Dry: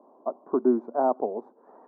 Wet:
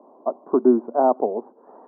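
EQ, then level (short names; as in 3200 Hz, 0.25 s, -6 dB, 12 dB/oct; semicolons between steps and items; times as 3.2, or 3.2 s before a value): HPF 120 Hz; LPF 1400 Hz 12 dB/oct; +6.0 dB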